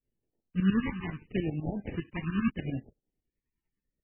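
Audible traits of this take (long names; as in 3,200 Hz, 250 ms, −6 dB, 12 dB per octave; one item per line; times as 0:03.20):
aliases and images of a low sample rate 1,400 Hz, jitter 20%
tremolo saw up 10 Hz, depth 85%
phaser sweep stages 2, 0.76 Hz, lowest notch 550–1,300 Hz
MP3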